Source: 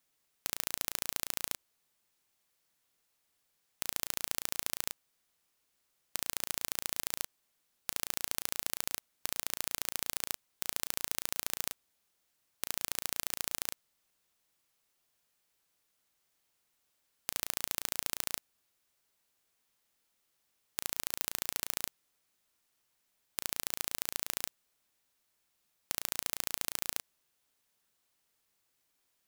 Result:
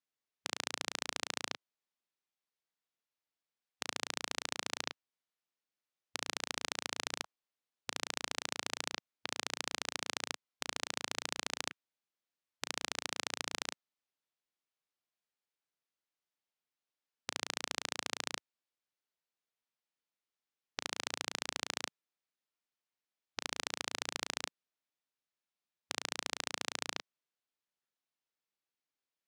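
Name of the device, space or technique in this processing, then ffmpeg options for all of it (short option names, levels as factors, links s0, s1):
over-cleaned archive recording: -af "highpass=160,lowpass=5400,afwtdn=0.002,volume=1.41"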